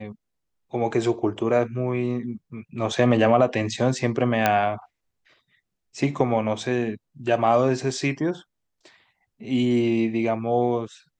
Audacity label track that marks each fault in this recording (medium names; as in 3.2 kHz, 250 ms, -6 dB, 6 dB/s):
4.460000	4.460000	pop -5 dBFS